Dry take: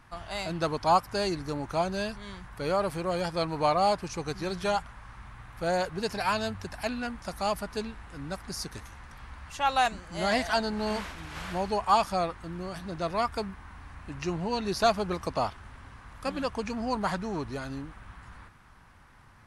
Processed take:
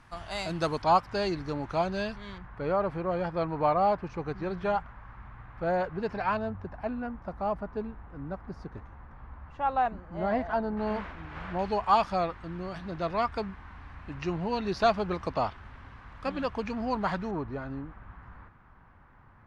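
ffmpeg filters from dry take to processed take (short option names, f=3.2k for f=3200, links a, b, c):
-af "asetnsamples=n=441:p=0,asendcmd='0.82 lowpass f 4100;2.38 lowpass f 1800;6.37 lowpass f 1100;10.77 lowpass f 1900;11.59 lowpass f 3600;17.31 lowpass f 1600',lowpass=9.9k"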